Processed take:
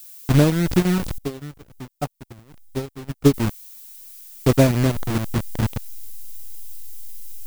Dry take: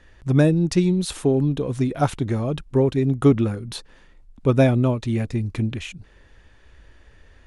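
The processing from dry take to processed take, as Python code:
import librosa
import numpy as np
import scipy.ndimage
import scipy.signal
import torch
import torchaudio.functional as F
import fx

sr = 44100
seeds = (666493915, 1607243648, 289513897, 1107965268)

y = fx.delta_hold(x, sr, step_db=-17.5)
y = fx.low_shelf(y, sr, hz=190.0, db=2.5)
y = fx.transient(y, sr, attack_db=2, sustain_db=-10)
y = fx.dmg_noise_colour(y, sr, seeds[0], colour='violet', level_db=-42.0)
y = fx.upward_expand(y, sr, threshold_db=-30.0, expansion=2.5, at=(1.18, 3.34))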